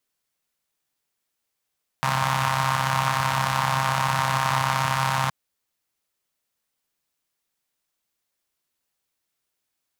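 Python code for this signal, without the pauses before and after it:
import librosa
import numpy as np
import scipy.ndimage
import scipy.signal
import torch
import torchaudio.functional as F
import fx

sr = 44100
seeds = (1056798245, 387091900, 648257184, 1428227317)

y = fx.engine_four(sr, seeds[0], length_s=3.27, rpm=4000, resonances_hz=(140.0, 970.0))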